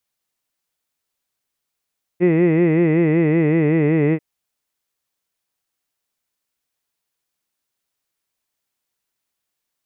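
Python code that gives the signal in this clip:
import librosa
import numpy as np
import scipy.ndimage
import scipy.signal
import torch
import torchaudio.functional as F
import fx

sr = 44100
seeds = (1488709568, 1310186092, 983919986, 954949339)

y = fx.vowel(sr, seeds[0], length_s=1.99, word='hid', hz=170.0, glide_st=-2.0, vibrato_hz=5.3, vibrato_st=1.1)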